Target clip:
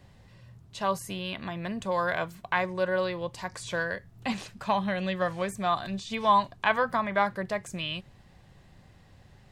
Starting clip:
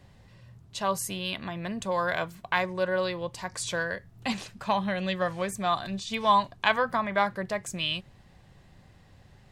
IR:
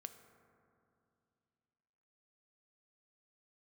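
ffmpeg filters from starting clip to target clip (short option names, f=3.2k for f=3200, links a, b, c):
-filter_complex "[0:a]acrossover=split=2700[a][b];[b]acompressor=threshold=-39dB:ratio=4:attack=1:release=60[c];[a][c]amix=inputs=2:normalize=0"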